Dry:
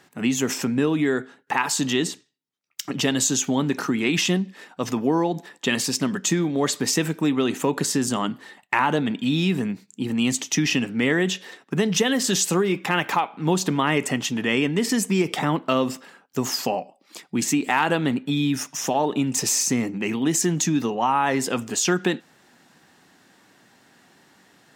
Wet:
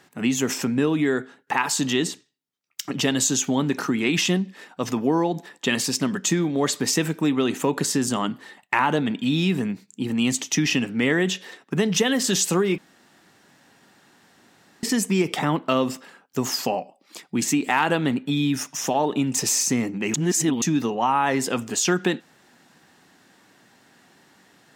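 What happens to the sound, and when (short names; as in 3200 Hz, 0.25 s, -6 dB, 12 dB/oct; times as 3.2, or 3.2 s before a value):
12.78–14.83 room tone
20.14–20.62 reverse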